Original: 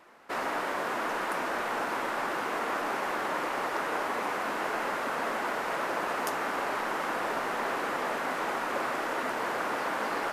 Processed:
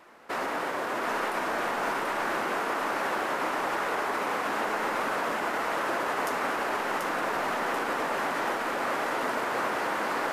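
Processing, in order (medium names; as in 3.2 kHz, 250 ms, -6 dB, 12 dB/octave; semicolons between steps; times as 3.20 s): peak limiter -24.5 dBFS, peak gain reduction 6 dB; two-band feedback delay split 640 Hz, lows 114 ms, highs 736 ms, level -4 dB; trim +2.5 dB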